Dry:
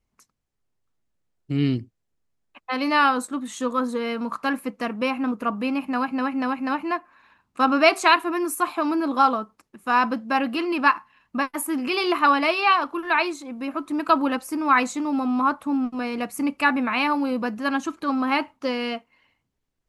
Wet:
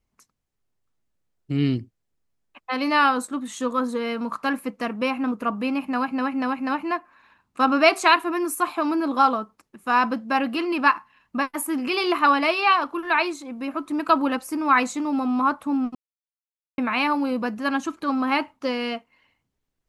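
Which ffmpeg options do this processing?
-filter_complex "[0:a]asplit=3[s0][s1][s2];[s0]atrim=end=15.95,asetpts=PTS-STARTPTS,afade=t=out:st=15.946:d=0.004:c=hsin[s3];[s1]atrim=start=15.95:end=16.78,asetpts=PTS-STARTPTS,volume=0[s4];[s2]atrim=start=16.78,asetpts=PTS-STARTPTS,afade=t=in:d=0.004:c=hsin[s5];[s3][s4][s5]concat=n=3:v=0:a=1"

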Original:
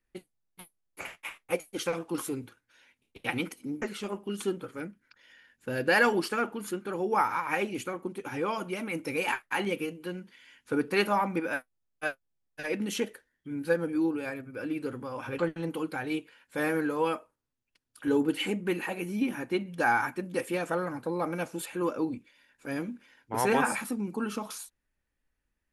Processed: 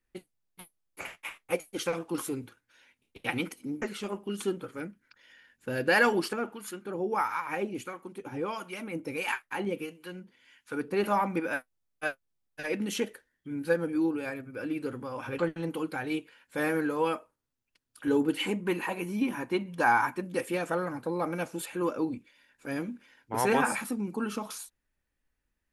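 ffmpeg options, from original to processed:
-filter_complex "[0:a]asettb=1/sr,asplit=3[s0][s1][s2];[s0]atrim=end=6.334[s3];[s1]atrim=start=6.33:end=11.04,asetpts=PTS-STARTPTS,afade=t=in:d=0.004:c=qsin,afade=t=out:st=4.706:d=0.004:c=qsin,acrossover=split=820[s4][s5];[s4]aeval=exprs='val(0)*(1-0.7/2+0.7/2*cos(2*PI*1.5*n/s))':c=same[s6];[s5]aeval=exprs='val(0)*(1-0.7/2-0.7/2*cos(2*PI*1.5*n/s))':c=same[s7];[s6][s7]amix=inputs=2:normalize=0[s8];[s2]atrim=start=11.036[s9];[s3][s8]acrossfade=d=0.004:c1=hsin:c2=qsin[s10];[s10][s9]acrossfade=d=0.004:c1=qsin:c2=hsin,asettb=1/sr,asplit=3[s11][s12][s13];[s11]atrim=end=18.394[s14];[s12]atrim=start=18.39:end=20.22,asetpts=PTS-STARTPTS,afade=t=in:d=0.004:c=qsin,afade=t=out:st=1.826:d=0.004:c=qsin,equalizer=f=1000:w=5.5:g=10[s15];[s13]atrim=start=20.216[s16];[s14][s15]acrossfade=d=0.004:c1=hsin:c2=qsin[s17];[s17][s16]acrossfade=d=0.004:c1=qsin:c2=hsin"

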